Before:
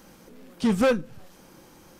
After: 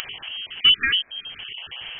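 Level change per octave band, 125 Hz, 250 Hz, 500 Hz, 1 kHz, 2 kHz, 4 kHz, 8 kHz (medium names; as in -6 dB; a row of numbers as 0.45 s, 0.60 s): under -10 dB, -21.5 dB, under -25 dB, -6.5 dB, +11.0 dB, +25.0 dB, no reading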